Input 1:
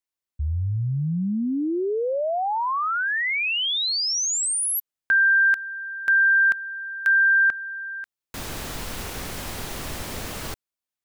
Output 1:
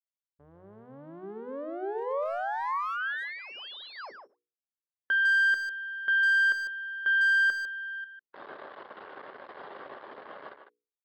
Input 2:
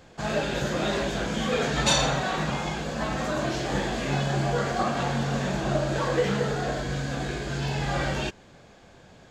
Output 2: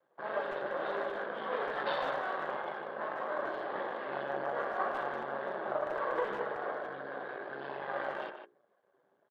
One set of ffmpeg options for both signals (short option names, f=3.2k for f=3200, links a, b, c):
-filter_complex "[0:a]afftdn=nr=16:nf=-40,aresample=11025,aeval=exprs='max(val(0),0)':c=same,aresample=44100,highpass=350,equalizer=f=400:t=q:w=4:g=7,equalizer=f=570:t=q:w=4:g=8,equalizer=f=810:t=q:w=4:g=4,equalizer=f=1.1k:t=q:w=4:g=8,equalizer=f=1.6k:t=q:w=4:g=7,equalizer=f=2.5k:t=q:w=4:g=-9,lowpass=f=3.2k:w=0.5412,lowpass=f=3.2k:w=1.3066,bandreject=f=60:t=h:w=6,bandreject=f=120:t=h:w=6,bandreject=f=180:t=h:w=6,bandreject=f=240:t=h:w=6,bandreject=f=300:t=h:w=6,bandreject=f=360:t=h:w=6,bandreject=f=420:t=h:w=6,bandreject=f=480:t=h:w=6,asplit=2[a][b];[b]adelay=150,highpass=300,lowpass=3.4k,asoftclip=type=hard:threshold=-20.5dB,volume=-7dB[c];[a][c]amix=inputs=2:normalize=0,volume=-8.5dB"